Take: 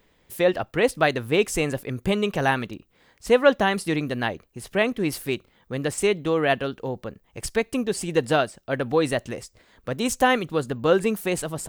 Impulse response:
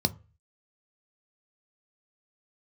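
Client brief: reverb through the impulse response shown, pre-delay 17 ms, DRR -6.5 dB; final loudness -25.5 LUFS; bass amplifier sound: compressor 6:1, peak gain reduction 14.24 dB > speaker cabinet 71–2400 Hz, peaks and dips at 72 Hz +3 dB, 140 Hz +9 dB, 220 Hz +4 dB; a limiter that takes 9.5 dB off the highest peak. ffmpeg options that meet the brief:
-filter_complex "[0:a]alimiter=limit=-14dB:level=0:latency=1,asplit=2[a][b];[1:a]atrim=start_sample=2205,adelay=17[c];[b][c]afir=irnorm=-1:irlink=0,volume=-1.5dB[d];[a][d]amix=inputs=2:normalize=0,acompressor=threshold=-20dB:ratio=6,highpass=f=71:w=0.5412,highpass=f=71:w=1.3066,equalizer=f=72:t=q:w=4:g=3,equalizer=f=140:t=q:w=4:g=9,equalizer=f=220:t=q:w=4:g=4,lowpass=f=2.4k:w=0.5412,lowpass=f=2.4k:w=1.3066,volume=-3.5dB"

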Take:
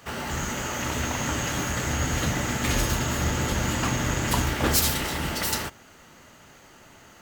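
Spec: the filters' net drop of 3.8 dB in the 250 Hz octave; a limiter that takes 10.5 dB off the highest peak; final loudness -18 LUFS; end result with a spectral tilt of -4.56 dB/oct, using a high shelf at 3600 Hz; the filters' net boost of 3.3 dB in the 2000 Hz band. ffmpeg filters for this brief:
-af "equalizer=f=250:t=o:g=-5,equalizer=f=2k:t=o:g=6.5,highshelf=f=3.6k:g=-9,volume=12dB,alimiter=limit=-9dB:level=0:latency=1"

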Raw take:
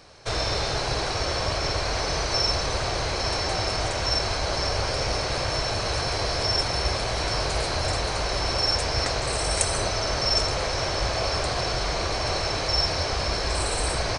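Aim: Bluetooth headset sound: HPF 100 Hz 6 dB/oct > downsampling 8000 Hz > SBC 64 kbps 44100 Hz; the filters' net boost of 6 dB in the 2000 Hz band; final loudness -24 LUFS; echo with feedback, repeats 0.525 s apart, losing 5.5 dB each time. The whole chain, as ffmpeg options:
-af "highpass=f=100:p=1,equalizer=f=2k:t=o:g=7.5,aecho=1:1:525|1050|1575|2100|2625|3150|3675:0.531|0.281|0.149|0.079|0.0419|0.0222|0.0118,aresample=8000,aresample=44100,volume=0.5dB" -ar 44100 -c:a sbc -b:a 64k

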